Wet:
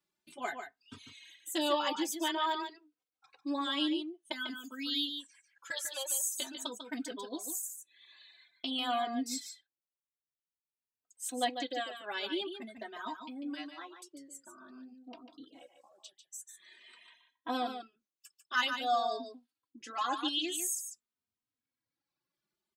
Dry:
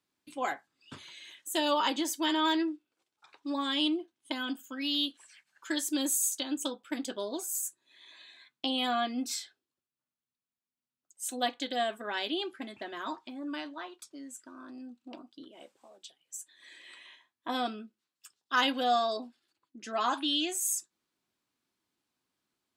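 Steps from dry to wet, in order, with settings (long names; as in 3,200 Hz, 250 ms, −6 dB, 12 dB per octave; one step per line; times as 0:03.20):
0:05.70–0:06.11: elliptic high-pass filter 490 Hz, stop band 50 dB
reverb reduction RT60 1.6 s
single-tap delay 146 ms −8 dB
barber-pole flanger 3 ms +0.49 Hz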